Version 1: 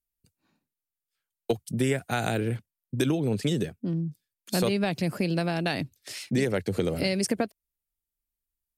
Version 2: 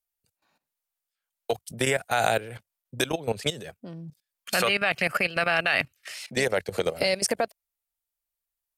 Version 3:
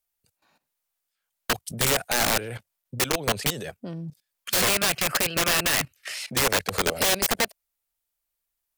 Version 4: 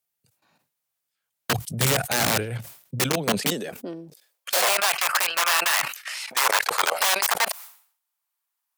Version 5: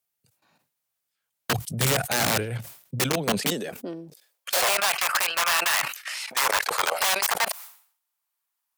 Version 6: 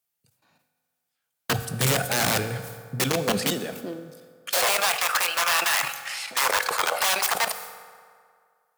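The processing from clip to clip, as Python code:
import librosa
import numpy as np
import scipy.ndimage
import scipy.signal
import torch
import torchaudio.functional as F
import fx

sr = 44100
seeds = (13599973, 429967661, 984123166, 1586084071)

y1 = fx.spec_box(x, sr, start_s=4.45, length_s=1.69, low_hz=1100.0, high_hz=3200.0, gain_db=10)
y1 = fx.low_shelf_res(y1, sr, hz=430.0, db=-10.5, q=1.5)
y1 = fx.level_steps(y1, sr, step_db=16)
y1 = F.gain(torch.from_numpy(y1), 9.0).numpy()
y2 = (np.mod(10.0 ** (20.5 / 20.0) * y1 + 1.0, 2.0) - 1.0) / 10.0 ** (20.5 / 20.0)
y2 = F.gain(torch.from_numpy(y2), 5.0).numpy()
y3 = fx.filter_sweep_highpass(y2, sr, from_hz=120.0, to_hz=960.0, start_s=2.85, end_s=5.0, q=2.2)
y3 = fx.sustainer(y3, sr, db_per_s=110.0)
y4 = 10.0 ** (-14.0 / 20.0) * np.tanh(y3 / 10.0 ** (-14.0 / 20.0))
y5 = fx.rev_fdn(y4, sr, rt60_s=2.1, lf_ratio=0.85, hf_ratio=0.6, size_ms=12.0, drr_db=9.0)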